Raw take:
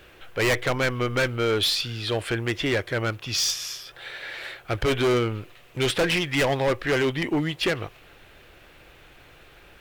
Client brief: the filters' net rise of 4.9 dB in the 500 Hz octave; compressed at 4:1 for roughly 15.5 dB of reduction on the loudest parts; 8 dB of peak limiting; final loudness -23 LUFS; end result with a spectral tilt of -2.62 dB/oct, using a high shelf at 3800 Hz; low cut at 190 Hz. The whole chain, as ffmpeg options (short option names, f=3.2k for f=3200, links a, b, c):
-af "highpass=190,equalizer=f=500:t=o:g=6,highshelf=f=3.8k:g=5,acompressor=threshold=-34dB:ratio=4,volume=13dB,alimiter=limit=-13dB:level=0:latency=1"